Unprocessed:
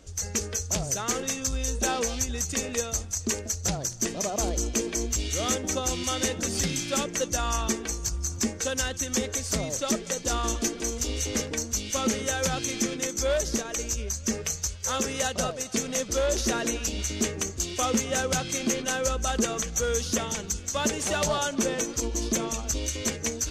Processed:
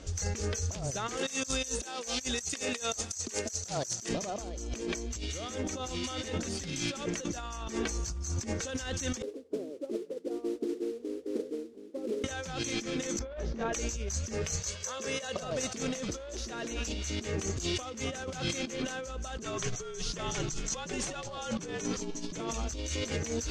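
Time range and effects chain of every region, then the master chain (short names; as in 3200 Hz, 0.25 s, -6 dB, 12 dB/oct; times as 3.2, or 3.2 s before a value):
1.17–4.09 HPF 320 Hz 6 dB/oct + high shelf 4900 Hz +12 dB
9.22–12.24 Butterworth band-pass 370 Hz, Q 2.1 + modulation noise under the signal 19 dB + upward expander, over -50 dBFS
13.19–13.73 tape spacing loss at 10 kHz 33 dB + doubler 22 ms -6 dB
14.6–15.43 HPF 160 Hz + comb 1.8 ms, depth 40%
19.42–22.4 LPF 11000 Hz 24 dB/oct + frequency shift -51 Hz
whole clip: LPF 6800 Hz 12 dB/oct; negative-ratio compressor -36 dBFS, ratio -1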